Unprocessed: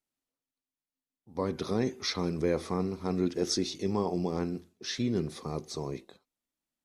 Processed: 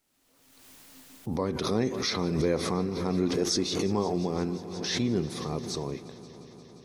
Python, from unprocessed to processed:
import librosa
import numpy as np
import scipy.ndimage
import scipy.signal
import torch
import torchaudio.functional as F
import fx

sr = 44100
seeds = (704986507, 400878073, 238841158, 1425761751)

y = fx.echo_heads(x, sr, ms=176, heads='all three', feedback_pct=71, wet_db=-22)
y = fx.pre_swell(y, sr, db_per_s=36.0)
y = y * 10.0 ** (1.5 / 20.0)